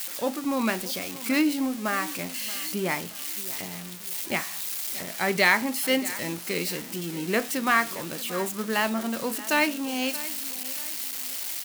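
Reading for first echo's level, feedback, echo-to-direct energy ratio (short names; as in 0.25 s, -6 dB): -17.0 dB, 39%, -16.5 dB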